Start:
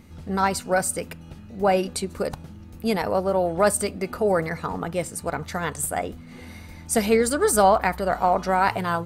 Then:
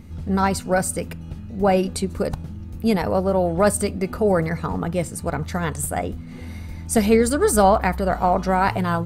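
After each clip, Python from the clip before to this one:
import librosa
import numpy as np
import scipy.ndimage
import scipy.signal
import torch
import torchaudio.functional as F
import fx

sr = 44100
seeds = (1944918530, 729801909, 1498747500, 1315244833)

y = fx.low_shelf(x, sr, hz=240.0, db=10.5)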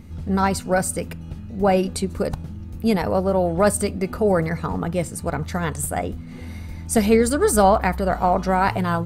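y = x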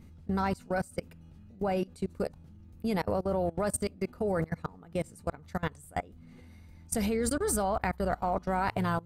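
y = fx.level_steps(x, sr, step_db=23)
y = y * librosa.db_to_amplitude(-5.5)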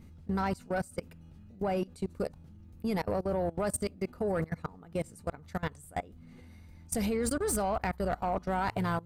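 y = 10.0 ** (-21.5 / 20.0) * np.tanh(x / 10.0 ** (-21.5 / 20.0))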